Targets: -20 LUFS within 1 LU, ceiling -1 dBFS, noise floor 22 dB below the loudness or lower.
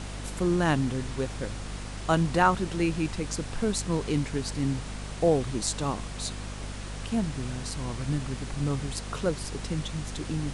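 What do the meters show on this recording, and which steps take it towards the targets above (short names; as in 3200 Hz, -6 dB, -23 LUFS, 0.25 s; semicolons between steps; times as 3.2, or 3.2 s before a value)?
hum 50 Hz; harmonics up to 250 Hz; hum level -35 dBFS; noise floor -38 dBFS; noise floor target -52 dBFS; loudness -29.5 LUFS; peak -9.0 dBFS; loudness target -20.0 LUFS
-> notches 50/100/150/200/250 Hz; noise print and reduce 14 dB; gain +9.5 dB; limiter -1 dBFS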